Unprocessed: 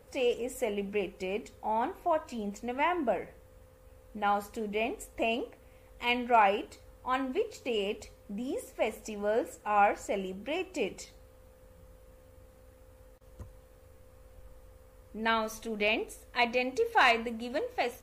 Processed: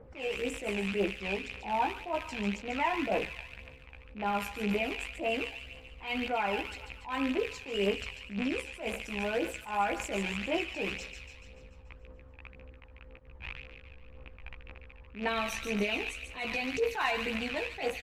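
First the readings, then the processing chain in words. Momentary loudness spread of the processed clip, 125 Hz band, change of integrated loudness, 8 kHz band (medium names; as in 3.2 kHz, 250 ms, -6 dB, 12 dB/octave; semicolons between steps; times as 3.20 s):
20 LU, +4.5 dB, -2.0 dB, 0.0 dB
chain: rattle on loud lows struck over -49 dBFS, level -25 dBFS; level-controlled noise filter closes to 1.4 kHz, open at -27.5 dBFS; peak limiter -24 dBFS, peak gain reduction 10.5 dB; doubling 15 ms -3 dB; feedback echo behind a high-pass 144 ms, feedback 58%, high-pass 1.7 kHz, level -6.5 dB; phaser 1.9 Hz, delay 1.3 ms, feedback 42%; attacks held to a fixed rise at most 150 dB/s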